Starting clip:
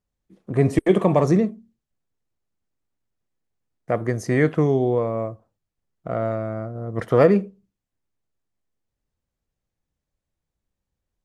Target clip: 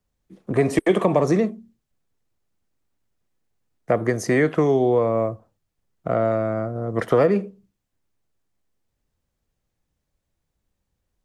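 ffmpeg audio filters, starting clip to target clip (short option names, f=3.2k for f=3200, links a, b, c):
-filter_complex "[0:a]acrossover=split=220|590[a][b][c];[a]acompressor=threshold=-36dB:ratio=4[d];[b]acompressor=threshold=-24dB:ratio=4[e];[c]acompressor=threshold=-28dB:ratio=4[f];[d][e][f]amix=inputs=3:normalize=0,volume=5.5dB"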